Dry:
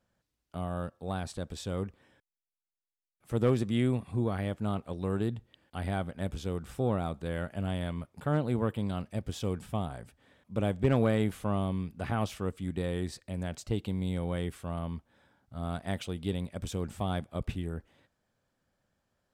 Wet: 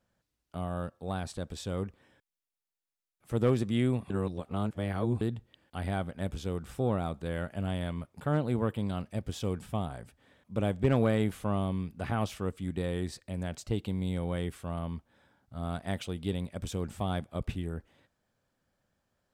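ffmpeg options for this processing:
-filter_complex "[0:a]asplit=3[a][b][c];[a]atrim=end=4.102[d];[b]atrim=start=4.098:end=5.212,asetpts=PTS-STARTPTS,areverse[e];[c]atrim=start=5.208[f];[d][e]acrossfade=d=0.004:c1=hsin:c2=hsin[g];[g][f]acrossfade=d=0.004:c1=hsin:c2=hsin"

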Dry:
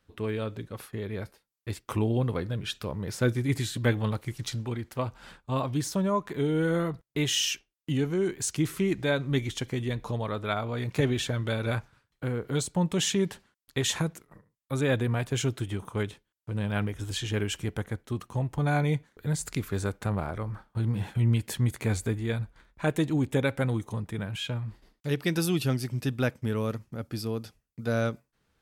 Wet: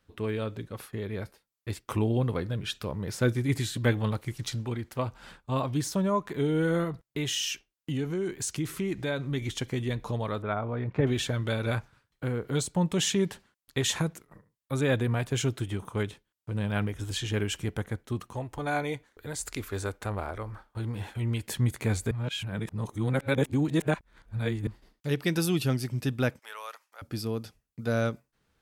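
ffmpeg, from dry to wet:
-filter_complex "[0:a]asettb=1/sr,asplit=3[a][b][c];[a]atrim=end=6.844[d];[b]atrim=start=6.84:end=9.42,asetpts=PTS-STARTPTS,afade=t=in:d=0.004:c=qsin,afade=t=out:st=2.576:d=0.004:c=qsin,acompressor=threshold=-29dB:ratio=2:attack=3.2:release=140:knee=1:detection=peak[e];[c]atrim=start=9.416[f];[d][e]acrossfade=d=0.004:c1=hsin:c2=qsin[g];[g][f]acrossfade=d=0.004:c1=qsin:c2=hsin,asettb=1/sr,asplit=3[h][i][j];[h]atrim=end=10.424[k];[i]atrim=start=10.42:end=11.07,asetpts=PTS-STARTPTS,afade=t=in:d=0.004:c=qsin,afade=t=out:st=0.646:d=0.004:c=qsin,lowpass=1.6k[l];[j]atrim=start=11.066[m];[k][l]acrossfade=d=0.004:c1=hsin:c2=qsin[n];[n][m]acrossfade=d=0.004:c1=qsin:c2=hsin,asettb=1/sr,asplit=3[o][p][q];[o]atrim=end=18.334[r];[p]atrim=start=18.33:end=21.48,asetpts=PTS-STARTPTS,afade=t=in:d=0.004:c=qsin,afade=t=out:st=3.146:d=0.004:c=qsin,equalizer=f=160:t=o:w=0.77:g=-14.5[s];[q]atrim=start=21.476[t];[r][s]acrossfade=d=0.004:c1=hsin:c2=qsin[u];[u][t]acrossfade=d=0.004:c1=qsin:c2=hsin,asettb=1/sr,asplit=3[v][w][x];[v]atrim=end=26.394[y];[w]atrim=start=26.39:end=27.02,asetpts=PTS-STARTPTS,afade=t=in:d=0.004:c=qsin,afade=t=out:st=0.626:d=0.004:c=qsin,highpass=f=790:w=0.5412,highpass=f=790:w=1.3066[z];[x]atrim=start=27.016[aa];[y][z]acrossfade=d=0.004:c1=hsin:c2=qsin[ab];[ab][aa]acrossfade=d=0.004:c1=qsin:c2=hsin,asplit=3[ac][ad][ae];[ac]atrim=end=22.112[af];[ad]atrim=start=22.108:end=24.672,asetpts=PTS-STARTPTS,areverse[ag];[ae]atrim=start=24.668[ah];[af][ag]acrossfade=d=0.004:c1=hsin:c2=hsin[ai];[ai][ah]acrossfade=d=0.004:c1=hsin:c2=hsin"

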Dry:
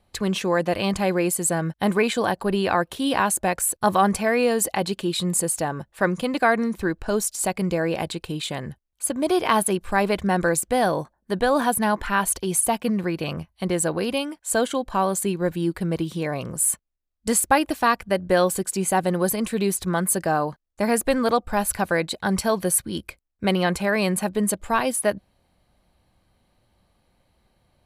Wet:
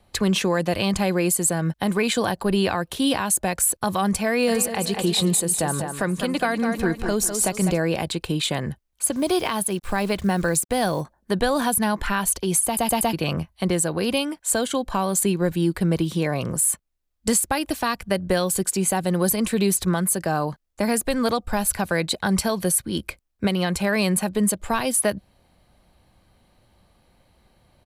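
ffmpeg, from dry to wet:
-filter_complex "[0:a]asplit=3[a][b][c];[a]afade=t=out:st=4.47:d=0.02[d];[b]aecho=1:1:200|400|600|800|1000:0.299|0.134|0.0605|0.0272|0.0122,afade=t=in:st=4.47:d=0.02,afade=t=out:st=7.76:d=0.02[e];[c]afade=t=in:st=7.76:d=0.02[f];[d][e][f]amix=inputs=3:normalize=0,asettb=1/sr,asplit=3[g][h][i];[g]atrim=end=9.124[j];[h]atrim=start=9.12:end=11.01,asetpts=PTS-STARTPTS,afade=t=in:d=0.004:c=qsin,afade=t=out:st=1.886:d=0.004:c=qsin,acrusher=bits=7:mix=0:aa=0.5[k];[i]atrim=start=11.006[l];[j][k]acrossfade=d=0.004:c1=hsin:c2=qsin[m];[m][l]acrossfade=d=0.004:c1=qsin:c2=hsin,asplit=5[n][o][p][q][r];[n]atrim=end=12.772[s];[o]atrim=start=12.648:end=12.772[t];[p]atrim=start=12.648:end=12.772[u];[q]atrim=start=12.648:end=12.772[v];[r]atrim=start=13.128[w];[s][t]acrossfade=d=0.004:c1=hsin:c2=hsin[x];[x][u]acrossfade=d=0.004:c1=hsin:c2=hsin[y];[y][v]acrossfade=d=0.004:c1=hsin:c2=hsin[z];[z][w]acrossfade=d=0.004:c1=hsin:c2=hsin,acrossover=split=190|3000[aa][ab][ac];[ab]acompressor=threshold=-28dB:ratio=2.5[ad];[aa][ad][ac]amix=inputs=3:normalize=0,alimiter=limit=-15dB:level=0:latency=1:release=289,acontrast=38"

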